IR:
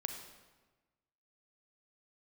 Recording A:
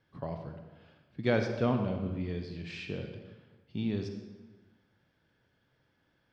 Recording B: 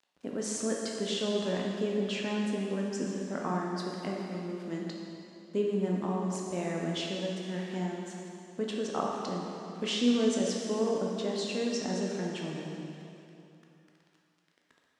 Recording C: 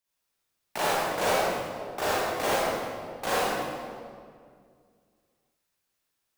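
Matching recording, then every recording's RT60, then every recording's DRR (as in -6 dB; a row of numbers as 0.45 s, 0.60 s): A; 1.3 s, 2.9 s, 2.1 s; 5.0 dB, -2.0 dB, -8.5 dB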